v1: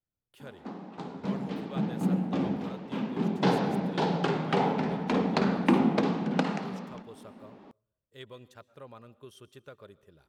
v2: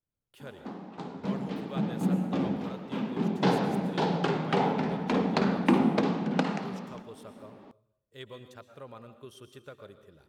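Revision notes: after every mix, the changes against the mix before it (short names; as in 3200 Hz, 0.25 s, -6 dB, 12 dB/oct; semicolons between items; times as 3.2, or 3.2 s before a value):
speech: send +11.0 dB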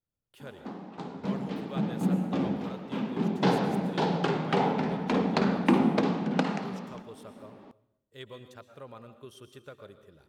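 background: send on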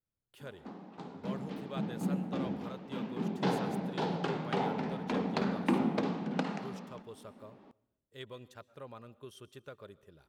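speech: send -11.5 dB; background -6.5 dB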